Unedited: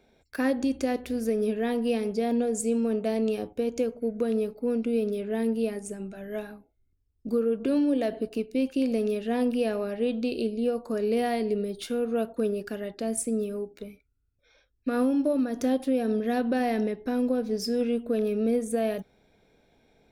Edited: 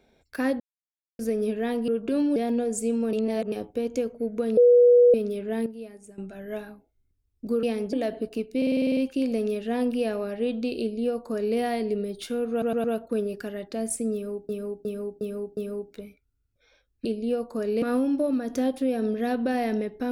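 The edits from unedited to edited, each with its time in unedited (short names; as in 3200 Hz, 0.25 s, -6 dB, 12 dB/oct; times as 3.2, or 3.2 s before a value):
0.6–1.19 mute
1.88–2.18 swap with 7.45–7.93
2.95–3.34 reverse
4.39–4.96 bleep 486 Hz -12 dBFS
5.48–6 gain -11.5 dB
8.57 stutter 0.05 s, 9 plays
10.4–11.17 copy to 14.88
12.11 stutter 0.11 s, 4 plays
13.4–13.76 loop, 5 plays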